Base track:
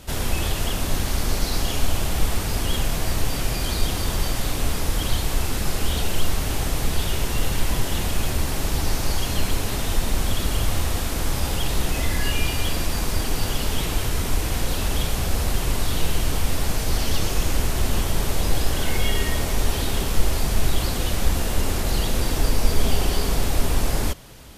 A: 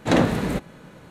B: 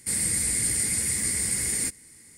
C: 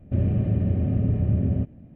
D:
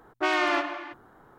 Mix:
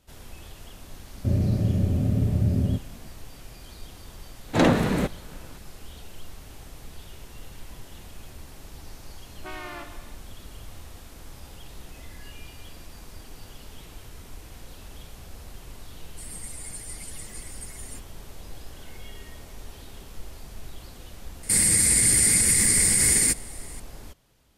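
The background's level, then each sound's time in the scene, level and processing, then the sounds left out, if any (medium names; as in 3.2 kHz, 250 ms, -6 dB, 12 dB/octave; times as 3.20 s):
base track -20 dB
1.13 s: add C -0.5 dB
4.48 s: add A -3 dB + waveshaping leveller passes 1
9.23 s: add D -14 dB
16.10 s: add B -8 dB + expander on every frequency bin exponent 3
21.43 s: add B -9 dB + loudness maximiser +17 dB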